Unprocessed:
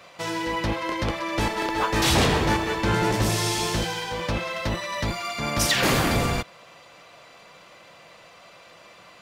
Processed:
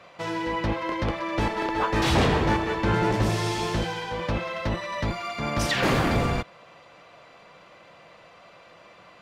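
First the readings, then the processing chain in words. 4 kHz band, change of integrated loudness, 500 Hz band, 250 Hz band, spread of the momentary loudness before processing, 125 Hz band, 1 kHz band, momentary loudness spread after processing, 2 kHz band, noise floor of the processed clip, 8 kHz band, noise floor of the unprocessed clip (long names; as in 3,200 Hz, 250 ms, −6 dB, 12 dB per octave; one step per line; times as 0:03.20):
−5.5 dB, −1.5 dB, 0.0 dB, 0.0 dB, 8 LU, 0.0 dB, −0.5 dB, 8 LU, −2.5 dB, −52 dBFS, −9.5 dB, −50 dBFS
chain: low-pass filter 2,300 Hz 6 dB per octave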